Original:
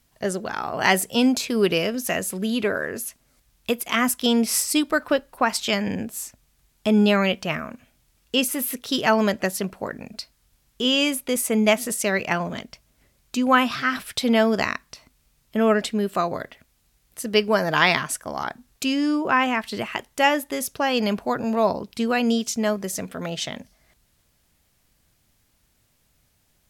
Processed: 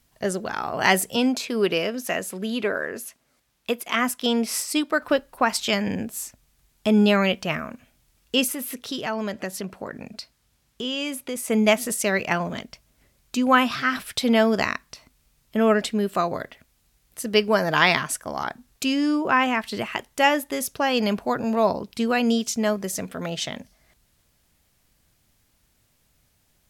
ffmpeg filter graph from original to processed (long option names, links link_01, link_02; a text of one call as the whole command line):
ffmpeg -i in.wav -filter_complex "[0:a]asettb=1/sr,asplit=3[link_01][link_02][link_03];[link_01]atrim=end=1.164[link_04];[link_02]atrim=start=1.16:end=5.02,asetpts=PTS-STARTPTS,afade=type=in:duration=0.004:curve=qsin,afade=type=out:start_time=3.856:duration=0.004:curve=qsin,highpass=frequency=260:poles=1,highshelf=frequency=4900:gain=-6.5[link_05];[link_03]atrim=start=5.016[link_06];[link_04][link_05]acrossfade=duration=0.004:curve1=hsin:curve2=qsin[link_07];[link_07][link_06]acrossfade=duration=0.004:curve1=qsin:curve2=hsin,asettb=1/sr,asplit=3[link_08][link_09][link_10];[link_08]atrim=end=8.524[link_11];[link_09]atrim=start=8.52:end=11.48,asetpts=PTS-STARTPTS,afade=type=in:duration=0.004:curve=qsin,afade=type=out:start_time=2.956:duration=0.004:curve=qsin,highpass=59,highshelf=frequency=10000:gain=-6,acompressor=threshold=-30dB:ratio=2:attack=3.2:release=140:knee=1:detection=peak[link_12];[link_10]atrim=start=11.476[link_13];[link_11][link_12]acrossfade=duration=0.004:curve1=hsin:curve2=qsin[link_14];[link_14][link_13]acrossfade=duration=0.004:curve1=qsin:curve2=hsin" out.wav